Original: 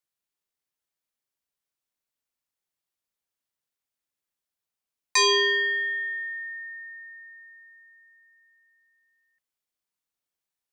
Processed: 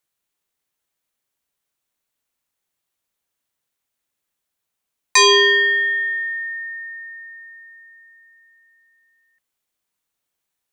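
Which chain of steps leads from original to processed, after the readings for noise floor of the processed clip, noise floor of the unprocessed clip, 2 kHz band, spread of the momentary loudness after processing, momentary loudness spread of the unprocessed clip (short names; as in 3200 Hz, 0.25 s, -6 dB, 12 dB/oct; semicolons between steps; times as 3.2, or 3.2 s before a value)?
-80 dBFS, under -85 dBFS, +8.5 dB, 20 LU, 21 LU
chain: bell 5000 Hz -3.5 dB 0.3 oct; gain +8.5 dB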